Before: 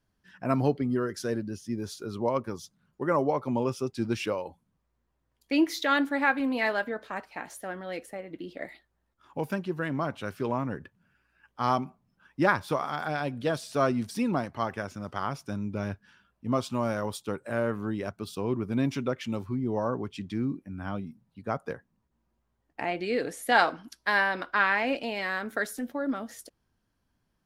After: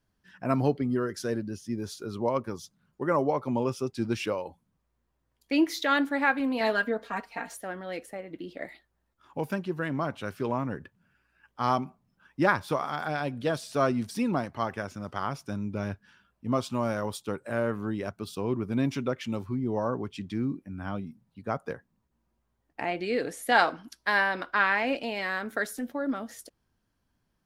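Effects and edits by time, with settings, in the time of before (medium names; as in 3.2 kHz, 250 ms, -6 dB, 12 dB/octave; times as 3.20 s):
6.60–7.57 s: comb 4.3 ms, depth 84%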